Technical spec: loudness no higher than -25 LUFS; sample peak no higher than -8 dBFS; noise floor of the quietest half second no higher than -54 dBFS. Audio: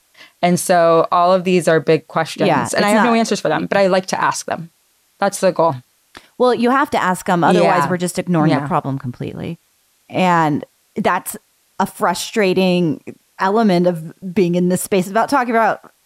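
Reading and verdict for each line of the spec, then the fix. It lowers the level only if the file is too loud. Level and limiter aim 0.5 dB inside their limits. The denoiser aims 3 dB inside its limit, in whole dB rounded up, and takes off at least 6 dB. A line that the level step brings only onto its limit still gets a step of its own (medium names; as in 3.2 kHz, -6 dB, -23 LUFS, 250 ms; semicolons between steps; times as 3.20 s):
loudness -16.0 LUFS: fail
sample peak -3.5 dBFS: fail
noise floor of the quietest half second -59 dBFS: pass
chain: trim -9.5 dB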